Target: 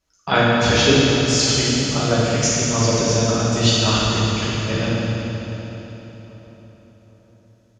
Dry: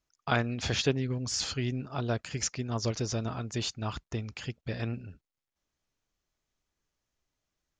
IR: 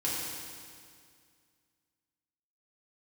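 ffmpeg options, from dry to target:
-filter_complex "[0:a]asettb=1/sr,asplit=3[a][b][c];[a]atrim=end=3.654[d];[b]atrim=start=3.65:end=4.14,asetpts=PTS-STARTPTS,afade=t=in:d=0.004:c=qsin,afade=t=out:st=0.486:d=0.004:c=qsin,equalizer=f=2.6k:w=0.56:g=6.5[e];[c]atrim=start=4.136[f];[d][e]acrossfade=d=0.004:c1=hsin:c2=qsin[g];[g][f]acrossfade=d=0.004:c1=qsin:c2=hsin,asplit=2[h][i];[i]adelay=804,lowpass=f=1.5k:p=1,volume=-17dB,asplit=2[j][k];[k]adelay=804,lowpass=f=1.5k:p=1,volume=0.43,asplit=2[l][m];[m]adelay=804,lowpass=f=1.5k:p=1,volume=0.43,asplit=2[n][o];[o]adelay=804,lowpass=f=1.5k:p=1,volume=0.43[p];[h][j][l][n][p]amix=inputs=5:normalize=0[q];[1:a]atrim=start_sample=2205,asetrate=26901,aresample=44100[r];[q][r]afir=irnorm=-1:irlink=0,volume=4.5dB"

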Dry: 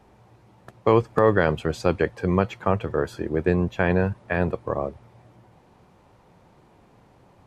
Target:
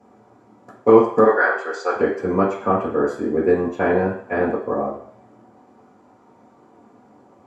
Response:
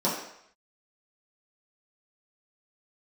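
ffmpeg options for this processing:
-filter_complex "[0:a]asettb=1/sr,asplit=3[a][b][c];[a]atrim=end=1.244[d];[b]atrim=start=1.24:end=1.96,asetpts=PTS-STARTPTS,afade=t=in:d=0.004:c=qsin,afade=t=out:st=0.716:d=0.004:c=qsin,highpass=f=480:w=0.5412,highpass=f=480:w=1.3066,equalizer=f=590:t=q:w=4:g=-6,equalizer=f=1.6k:t=q:w=4:g=9,equalizer=f=2.9k:t=q:w=4:g=-7,equalizer=f=4.5k:t=q:w=4:g=4,lowpass=f=7.3k:w=0.5412,lowpass=f=7.3k:w=1.3066[e];[c]atrim=start=1.956[f];[d][e]acrossfade=d=0.004:c1=hsin:c2=qsin[g];[g][f]acrossfade=d=0.004:c1=qsin:c2=hsin[h];[1:a]atrim=start_sample=2205,asetrate=57330,aresample=44100[i];[h][i]afir=irnorm=-1:irlink=0,volume=-8.5dB"

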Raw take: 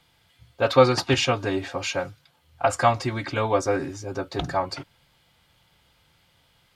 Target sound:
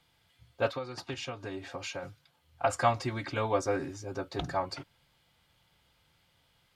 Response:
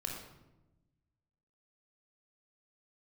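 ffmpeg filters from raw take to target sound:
-filter_complex "[0:a]asplit=3[a][b][c];[a]afade=t=out:st=0.69:d=0.02[d];[b]acompressor=threshold=-29dB:ratio=6,afade=t=in:st=0.69:d=0.02,afade=t=out:st=2.02:d=0.02[e];[c]afade=t=in:st=2.02:d=0.02[f];[d][e][f]amix=inputs=3:normalize=0,volume=-6.5dB"

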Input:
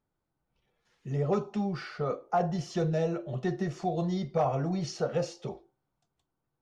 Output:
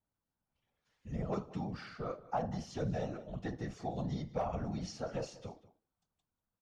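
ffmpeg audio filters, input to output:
-af "afftfilt=real='hypot(re,im)*cos(2*PI*random(0))':imag='hypot(re,im)*sin(2*PI*random(1))':win_size=512:overlap=0.75,equalizer=f=380:t=o:w=0.54:g=-6.5,aecho=1:1:190:0.119,volume=-1dB"

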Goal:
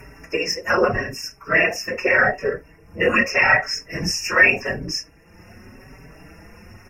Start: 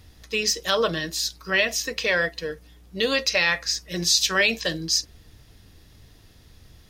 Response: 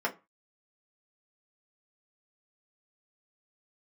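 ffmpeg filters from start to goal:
-filter_complex "[0:a]asettb=1/sr,asplit=3[a][b][c];[a]atrim=end=2.114[d];[b]atrim=start=2.11:end=4.59,asetpts=PTS-STARTPTS,afade=t=in:d=0.004:c=qsin,afade=t=out:st=2.476:d=0.004:c=qsin,asplit=2[e][f];[f]adelay=19,volume=-3dB[g];[e][g]amix=inputs=2:normalize=0,atrim=end_sample=109368[h];[c]atrim=start=4.586[i];[d][h]acrossfade=d=0.004:c1=hsin:c2=qsin[j];[j][i]acrossfade=d=0.004:c1=qsin:c2=hsin[k];[1:a]atrim=start_sample=2205,atrim=end_sample=3528[l];[k][l]afir=irnorm=-1:irlink=0,acompressor=mode=upward:threshold=-32dB:ratio=2.5,equalizer=f=3k:w=1.8:g=7.5,afftfilt=real='hypot(re,im)*cos(2*PI*random(0))':imag='hypot(re,im)*sin(2*PI*random(1))':win_size=512:overlap=0.75,asuperstop=centerf=3800:order=20:qfactor=1.6,lowshelf=f=110:g=9,alimiter=level_in=4.5dB:limit=-1dB:release=50:level=0:latency=1,asplit=2[m][n];[n]adelay=4.8,afreqshift=0.84[o];[m][o]amix=inputs=2:normalize=1"

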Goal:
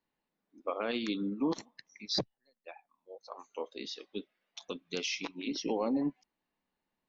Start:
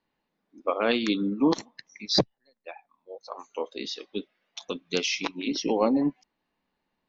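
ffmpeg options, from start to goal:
-af "alimiter=limit=-15dB:level=0:latency=1:release=49,volume=-7dB"

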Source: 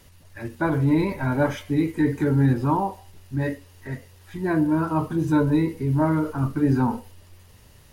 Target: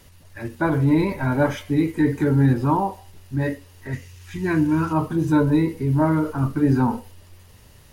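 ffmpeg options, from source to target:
-filter_complex "[0:a]asettb=1/sr,asplit=3[a][b][c];[a]atrim=end=3.934[d];[b]atrim=start=3.93:end=4.93,asetpts=PTS-STARTPTS,afade=t=in:d=0.004:c=qsin,afade=t=out:st=0.996:d=0.004:c=qsin,equalizer=f=100:t=o:w=0.67:g=7,equalizer=f=630:t=o:w=0.67:g=-10,equalizer=f=2.5k:t=o:w=0.67:g=7,equalizer=f=6.3k:t=o:w=0.67:g=8[e];[c]atrim=start=4.926[f];[d][e]acrossfade=d=0.004:c1=hsin:c2=qsin[g];[g][f]acrossfade=d=0.004:c1=qsin:c2=hsin,volume=2dB"

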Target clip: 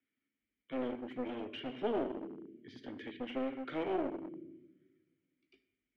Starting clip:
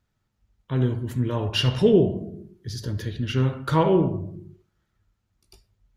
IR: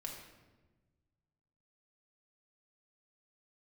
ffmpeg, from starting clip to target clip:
-filter_complex "[0:a]asplit=3[a][b][c];[a]bandpass=f=270:t=q:w=8,volume=0dB[d];[b]bandpass=f=2.29k:t=q:w=8,volume=-6dB[e];[c]bandpass=f=3.01k:t=q:w=8,volume=-9dB[f];[d][e][f]amix=inputs=3:normalize=0,asplit=2[g][h];[1:a]atrim=start_sample=2205[i];[h][i]afir=irnorm=-1:irlink=0,volume=-7dB[j];[g][j]amix=inputs=2:normalize=0,acrossover=split=230|1200[k][l][m];[k]acompressor=threshold=-48dB:ratio=4[n];[l]acompressor=threshold=-31dB:ratio=4[o];[m]acompressor=threshold=-51dB:ratio=4[p];[n][o][p]amix=inputs=3:normalize=0,aeval=exprs='clip(val(0),-1,0.00794)':c=same,acrossover=split=390 2600:gain=0.141 1 0.1[q][r][s];[q][r][s]amix=inputs=3:normalize=0,volume=9dB"

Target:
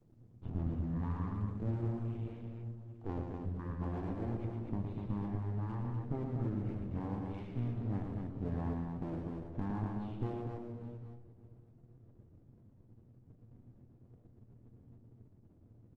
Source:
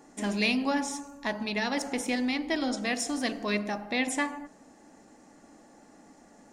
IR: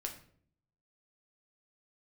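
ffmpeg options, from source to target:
-filter_complex "[0:a]aemphasis=mode=reproduction:type=cd,bandreject=f=50:t=h:w=6,bandreject=f=100:t=h:w=6,bandreject=f=150:t=h:w=6,bandreject=f=200:t=h:w=6,anlmdn=0.00158,adynamicequalizer=threshold=0.00631:dfrequency=210:dqfactor=2.2:tfrequency=210:tqfactor=2.2:attack=5:release=100:ratio=0.375:range=2.5:mode=cutabove:tftype=bell,acompressor=threshold=-30dB:ratio=5,bandpass=f=310:t=q:w=0.65:csg=0,aeval=exprs='max(val(0),0)':c=same,asetrate=18037,aresample=44100,aeval=exprs='abs(val(0))':c=same,asplit=2[a][b];[b]adelay=25,volume=-12dB[c];[a][c]amix=inputs=2:normalize=0,aecho=1:1:71|115|245|805:0.112|0.562|0.596|0.126,volume=1.5dB" -ar 48000 -c:a libopus -b:a 24k

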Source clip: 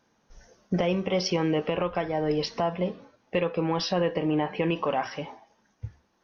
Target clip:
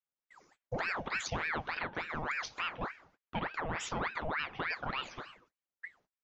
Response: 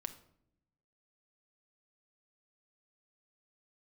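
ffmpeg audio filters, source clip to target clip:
-af "agate=range=-25dB:threshold=-55dB:ratio=16:detection=peak,aeval=exprs='val(0)*sin(2*PI*1200*n/s+1200*0.75/3.4*sin(2*PI*3.4*n/s))':c=same,volume=-7.5dB"

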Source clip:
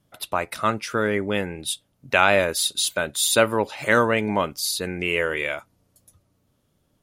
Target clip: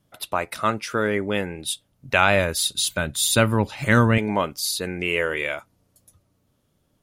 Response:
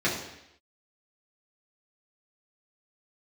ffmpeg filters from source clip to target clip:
-filter_complex "[0:a]asettb=1/sr,asplit=3[a][b][c];[a]atrim=end=1.724[d];[b]atrim=start=1.72:end=4.18,asetpts=PTS-STARTPTS,afade=t=in:d=0.004:c=qsin,afade=t=out:st=2.456:d=0.004:c=qsin,asubboost=boost=9.5:cutoff=190[e];[c]atrim=start=4.176[f];[d][e]acrossfade=d=0.004:c1=hsin:c2=qsin[g];[g][f]acrossfade=d=0.004:c1=qsin:c2=hsin"

